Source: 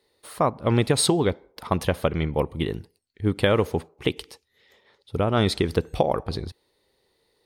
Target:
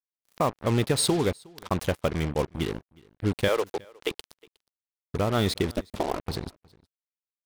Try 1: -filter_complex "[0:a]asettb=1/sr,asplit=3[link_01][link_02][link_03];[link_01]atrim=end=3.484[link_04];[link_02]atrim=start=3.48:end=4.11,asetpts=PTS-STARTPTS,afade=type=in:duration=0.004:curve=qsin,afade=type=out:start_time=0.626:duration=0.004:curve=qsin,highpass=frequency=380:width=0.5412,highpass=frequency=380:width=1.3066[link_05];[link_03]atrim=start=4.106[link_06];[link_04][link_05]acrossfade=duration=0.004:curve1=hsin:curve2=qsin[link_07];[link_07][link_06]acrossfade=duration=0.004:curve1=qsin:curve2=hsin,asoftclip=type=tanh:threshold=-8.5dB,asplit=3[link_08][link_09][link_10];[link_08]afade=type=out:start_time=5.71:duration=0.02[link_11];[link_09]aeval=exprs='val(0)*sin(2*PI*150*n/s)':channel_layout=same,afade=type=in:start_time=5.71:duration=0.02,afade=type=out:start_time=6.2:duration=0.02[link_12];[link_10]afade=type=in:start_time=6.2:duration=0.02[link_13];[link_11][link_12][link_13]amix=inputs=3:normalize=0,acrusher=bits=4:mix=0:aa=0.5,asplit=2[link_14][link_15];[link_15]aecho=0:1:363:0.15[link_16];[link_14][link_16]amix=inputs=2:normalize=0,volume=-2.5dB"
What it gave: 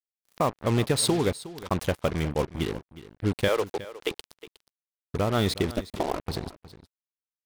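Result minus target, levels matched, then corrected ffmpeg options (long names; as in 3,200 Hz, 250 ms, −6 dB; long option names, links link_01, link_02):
echo-to-direct +9.5 dB
-filter_complex "[0:a]asettb=1/sr,asplit=3[link_01][link_02][link_03];[link_01]atrim=end=3.484[link_04];[link_02]atrim=start=3.48:end=4.11,asetpts=PTS-STARTPTS,afade=type=in:duration=0.004:curve=qsin,afade=type=out:start_time=0.626:duration=0.004:curve=qsin,highpass=frequency=380:width=0.5412,highpass=frequency=380:width=1.3066[link_05];[link_03]atrim=start=4.106[link_06];[link_04][link_05]acrossfade=duration=0.004:curve1=hsin:curve2=qsin[link_07];[link_07][link_06]acrossfade=duration=0.004:curve1=qsin:curve2=hsin,asoftclip=type=tanh:threshold=-8.5dB,asplit=3[link_08][link_09][link_10];[link_08]afade=type=out:start_time=5.71:duration=0.02[link_11];[link_09]aeval=exprs='val(0)*sin(2*PI*150*n/s)':channel_layout=same,afade=type=in:start_time=5.71:duration=0.02,afade=type=out:start_time=6.2:duration=0.02[link_12];[link_10]afade=type=in:start_time=6.2:duration=0.02[link_13];[link_11][link_12][link_13]amix=inputs=3:normalize=0,acrusher=bits=4:mix=0:aa=0.5,asplit=2[link_14][link_15];[link_15]aecho=0:1:363:0.0501[link_16];[link_14][link_16]amix=inputs=2:normalize=0,volume=-2.5dB"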